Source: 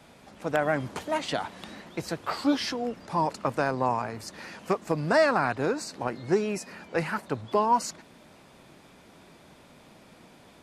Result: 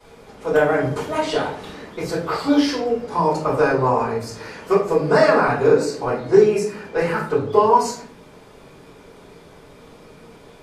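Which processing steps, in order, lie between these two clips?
peaking EQ 440 Hz +12.5 dB 0.29 oct; simulated room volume 56 m³, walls mixed, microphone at 3.3 m; trim -8 dB

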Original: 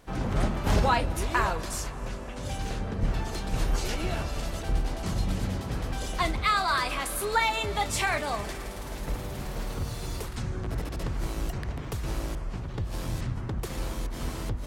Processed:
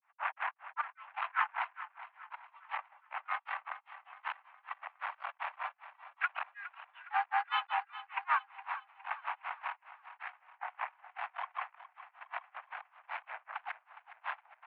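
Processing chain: peak limiter -20.5 dBFS, peak gain reduction 8.5 dB; trance gate ".x.x.xxx." 68 bpm -24 dB; granulator 131 ms, grains 5.2 per s; harmony voices +3 st -10 dB; valve stage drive 32 dB, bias 0.6; feedback delay 413 ms, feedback 43%, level -14 dB; mistuned SSB +370 Hz 450–2300 Hz; trim +11 dB

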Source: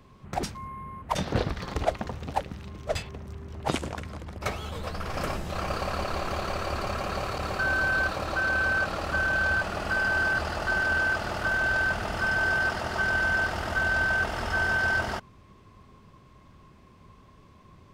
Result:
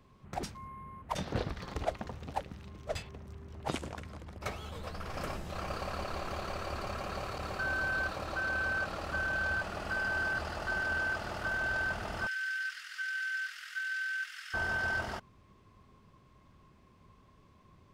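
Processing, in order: 12.27–14.54 s: steep high-pass 1.5 kHz 48 dB/octave; trim -7.5 dB

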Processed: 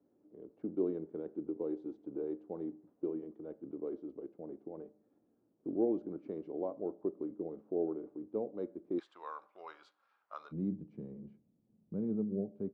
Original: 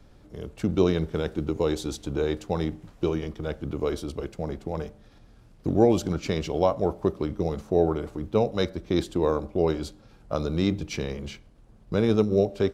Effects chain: ladder band-pass 360 Hz, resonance 45%, from 8.98 s 1.4 kHz, from 10.51 s 230 Hz; trim -3 dB

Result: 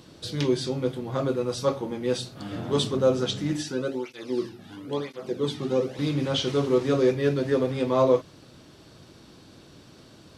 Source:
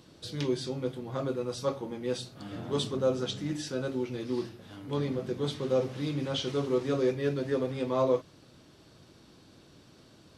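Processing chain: 3.63–5.99 s: cancelling through-zero flanger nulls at 1 Hz, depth 2.1 ms; trim +6 dB

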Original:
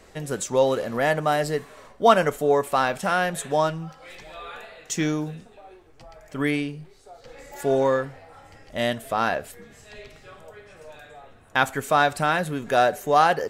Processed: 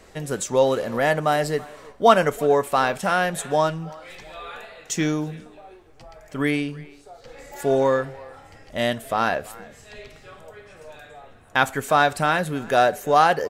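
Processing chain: speakerphone echo 330 ms, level -21 dB; trim +1.5 dB

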